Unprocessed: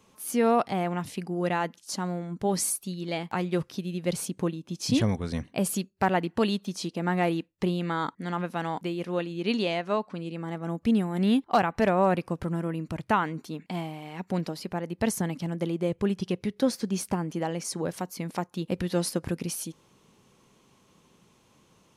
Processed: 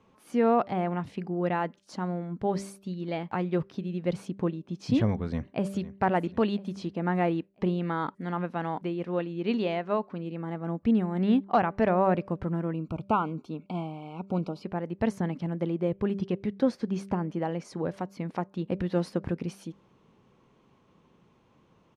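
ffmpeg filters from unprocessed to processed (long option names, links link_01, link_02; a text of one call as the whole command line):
ffmpeg -i in.wav -filter_complex "[0:a]asplit=2[link_01][link_02];[link_02]afade=type=in:start_time=5.24:duration=0.01,afade=type=out:start_time=5.9:duration=0.01,aecho=0:1:500|1000|1500|2000|2500:0.188365|0.0941825|0.0470912|0.0235456|0.0117728[link_03];[link_01][link_03]amix=inputs=2:normalize=0,asettb=1/sr,asplit=3[link_04][link_05][link_06];[link_04]atrim=end=12.734[link_07];[link_05]atrim=start=12.73:end=14.64,asetpts=PTS-STARTPTS,afade=type=in:duration=0.004:curve=qsin,afade=type=out:start_time=1.906:duration=0.004:curve=qsin,asuperstop=centerf=1800:order=12:qfactor=2.3[link_08];[link_06]atrim=start=14.636[link_09];[link_07][link_08]acrossfade=duration=0.004:curve1=hsin:curve2=qsin[link_10];[link_10][link_09]acrossfade=duration=0.004:curve1=qsin:curve2=hsin,lowpass=frequency=2300:poles=1,aemphasis=mode=reproduction:type=50kf,bandreject=frequency=196.1:width_type=h:width=4,bandreject=frequency=392.2:width_type=h:width=4,bandreject=frequency=588.3:width_type=h:width=4" out.wav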